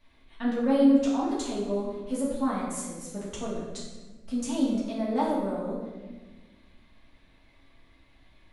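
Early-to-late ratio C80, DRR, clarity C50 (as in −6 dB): 3.5 dB, −7.0 dB, 1.0 dB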